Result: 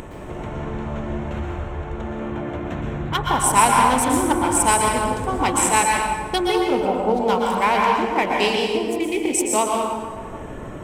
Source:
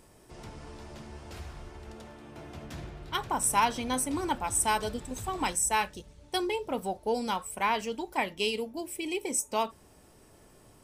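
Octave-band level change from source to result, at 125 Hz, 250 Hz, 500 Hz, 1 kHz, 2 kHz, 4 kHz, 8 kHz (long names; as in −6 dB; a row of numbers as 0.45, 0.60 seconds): +15.0, +13.0, +12.5, +12.5, +11.0, +8.5, +9.0 decibels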